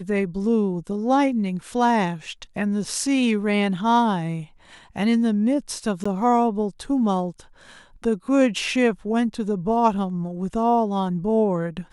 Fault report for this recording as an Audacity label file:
6.040000	6.050000	drop-out 15 ms

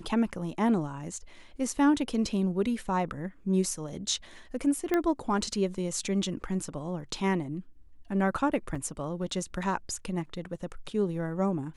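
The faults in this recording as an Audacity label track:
4.940000	4.940000	click −14 dBFS
8.750000	8.760000	drop-out 5.5 ms

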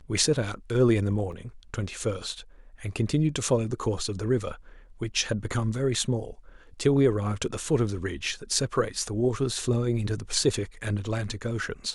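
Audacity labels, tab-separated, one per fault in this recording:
1.320000	1.320000	drop-out 3 ms

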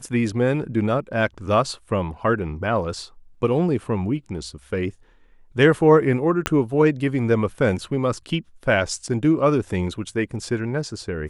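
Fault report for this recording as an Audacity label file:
6.460000	6.460000	click −5 dBFS

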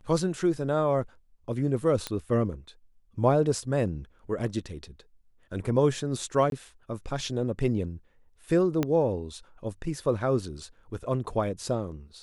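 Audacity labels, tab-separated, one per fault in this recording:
2.070000	2.070000	click −15 dBFS
6.500000	6.520000	drop-out 22 ms
8.830000	8.830000	click −13 dBFS

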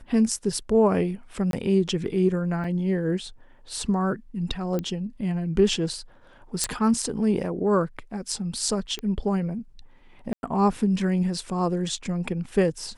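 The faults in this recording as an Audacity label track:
1.510000	1.530000	drop-out 22 ms
2.640000	2.640000	drop-out 3.6 ms
4.790000	4.790000	click −16 dBFS
6.640000	6.640000	click −8 dBFS
8.990000	8.990000	click −19 dBFS
10.330000	10.430000	drop-out 101 ms

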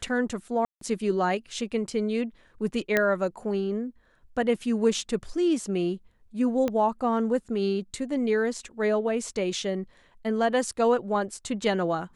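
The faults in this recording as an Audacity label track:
0.650000	0.810000	drop-out 163 ms
2.970000	2.970000	click −9 dBFS
6.680000	6.680000	click −15 dBFS

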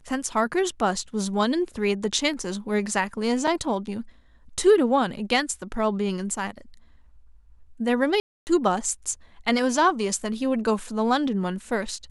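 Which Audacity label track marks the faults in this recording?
3.470000	3.470000	drop-out 4.9 ms
8.200000	8.470000	drop-out 269 ms

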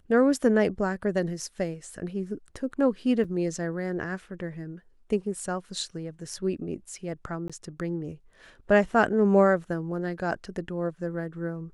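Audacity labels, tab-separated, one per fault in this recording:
3.240000	3.250000	drop-out 5.6 ms
7.480000	7.500000	drop-out 16 ms

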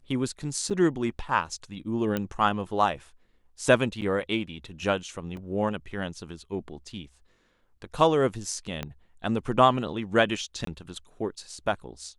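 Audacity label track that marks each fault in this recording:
0.700000	0.710000	drop-out 6.2 ms
2.170000	2.170000	click −15 dBFS
4.010000	4.020000	drop-out 8 ms
5.370000	5.370000	drop-out 2 ms
8.830000	8.830000	click −17 dBFS
10.650000	10.670000	drop-out 23 ms

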